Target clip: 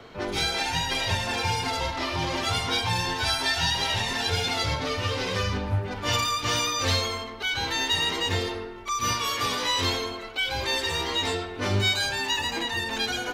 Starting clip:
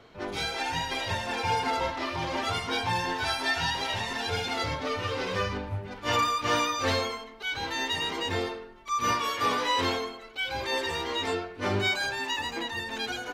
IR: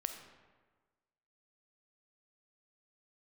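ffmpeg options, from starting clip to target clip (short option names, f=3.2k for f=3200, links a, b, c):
-filter_complex "[0:a]acrossover=split=150|3000[a][b][c];[b]acompressor=threshold=-37dB:ratio=4[d];[a][d][c]amix=inputs=3:normalize=0,asplit=2[e][f];[1:a]atrim=start_sample=2205[g];[f][g]afir=irnorm=-1:irlink=0,volume=4dB[h];[e][h]amix=inputs=2:normalize=0"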